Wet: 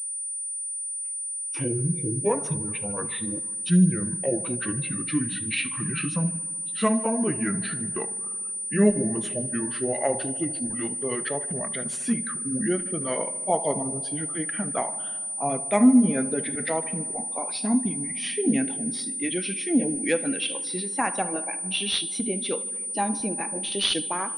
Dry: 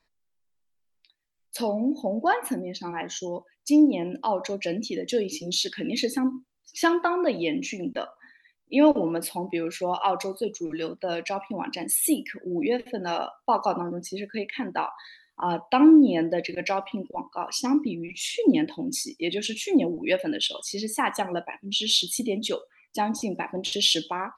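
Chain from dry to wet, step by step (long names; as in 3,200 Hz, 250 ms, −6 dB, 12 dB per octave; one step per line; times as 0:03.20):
pitch glide at a constant tempo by −10.5 semitones ending unshifted
feedback echo with a low-pass in the loop 75 ms, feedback 81%, low-pass 3,400 Hz, level −18.5 dB
switching amplifier with a slow clock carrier 9,300 Hz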